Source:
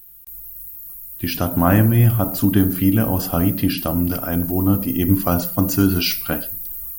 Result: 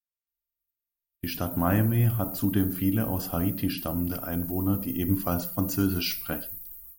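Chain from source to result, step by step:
noise gate −29 dBFS, range −45 dB
level −9 dB

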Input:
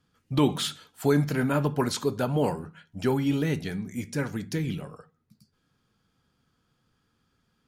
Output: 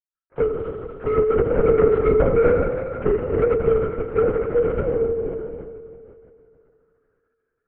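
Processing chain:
fade in at the beginning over 2.45 s
parametric band 450 Hz +12.5 dB 0.22 octaves
leveller curve on the samples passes 3
downward compressor 2 to 1, threshold −19 dBFS, peak gain reduction 4.5 dB
leveller curve on the samples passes 1
envelope filter 440–1,400 Hz, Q 3.9, down, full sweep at −21 dBFS
gain into a clipping stage and back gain 20 dB
phaser with its sweep stopped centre 980 Hz, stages 6
convolution reverb RT60 2.6 s, pre-delay 5 ms, DRR 0.5 dB
linear-prediction vocoder at 8 kHz whisper
level +7 dB

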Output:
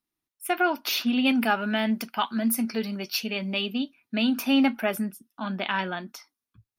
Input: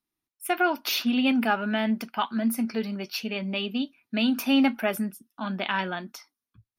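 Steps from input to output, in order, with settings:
0:01.25–0:03.74: high-shelf EQ 3,900 Hz +7.5 dB

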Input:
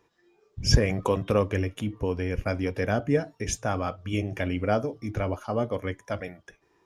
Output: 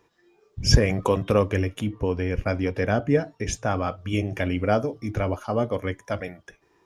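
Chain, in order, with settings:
0:01.89–0:03.91: high-shelf EQ 8,900 Hz −11 dB
level +3 dB

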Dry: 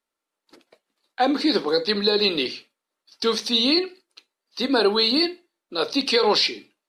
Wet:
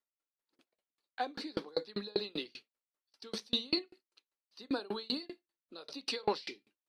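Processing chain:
tremolo with a ramp in dB decaying 5.1 Hz, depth 33 dB
level −7.5 dB

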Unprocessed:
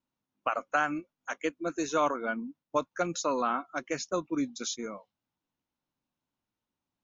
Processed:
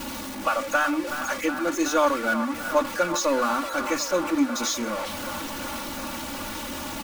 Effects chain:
converter with a step at zero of −31 dBFS
mains-hum notches 50/100/150/200/250/300/350 Hz
comb filter 3.5 ms, depth 77%
reversed playback
upward compression, threshold −31 dBFS
reversed playback
delay with a band-pass on its return 371 ms, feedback 81%, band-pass 1,300 Hz, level −9 dB
level +1.5 dB

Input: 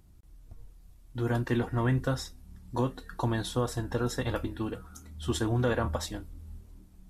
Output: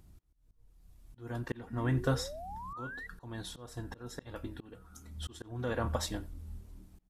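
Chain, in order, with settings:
volume swells 612 ms
far-end echo of a speakerphone 90 ms, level −20 dB
sound drawn into the spectrogram rise, 0:01.70–0:03.07, 220–2,000 Hz −44 dBFS

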